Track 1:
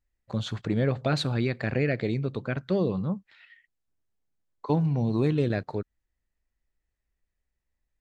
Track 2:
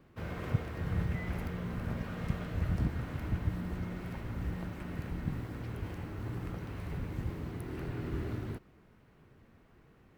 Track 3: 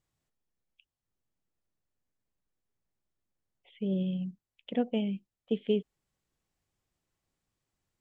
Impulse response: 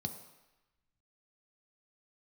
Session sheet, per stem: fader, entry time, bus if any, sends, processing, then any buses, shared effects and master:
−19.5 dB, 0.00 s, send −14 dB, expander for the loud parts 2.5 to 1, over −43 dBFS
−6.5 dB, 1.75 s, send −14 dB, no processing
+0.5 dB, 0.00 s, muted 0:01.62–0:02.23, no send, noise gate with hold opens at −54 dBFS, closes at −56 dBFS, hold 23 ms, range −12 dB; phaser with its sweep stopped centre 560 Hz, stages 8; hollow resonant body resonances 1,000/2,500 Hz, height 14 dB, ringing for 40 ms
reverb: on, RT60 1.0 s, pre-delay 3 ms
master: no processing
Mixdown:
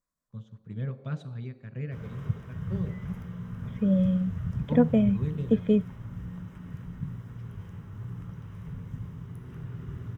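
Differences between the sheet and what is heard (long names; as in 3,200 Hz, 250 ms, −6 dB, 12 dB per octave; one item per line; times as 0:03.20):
stem 1 −19.5 dB → −9.0 dB
stem 3 +0.5 dB → +9.0 dB
reverb return +8.5 dB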